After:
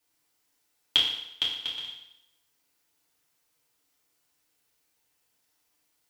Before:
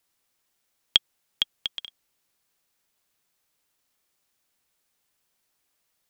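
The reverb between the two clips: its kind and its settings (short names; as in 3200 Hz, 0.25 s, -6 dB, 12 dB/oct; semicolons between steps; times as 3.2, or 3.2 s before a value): FDN reverb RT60 0.82 s, low-frequency decay 0.85×, high-frequency decay 0.95×, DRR -6.5 dB; gain -6 dB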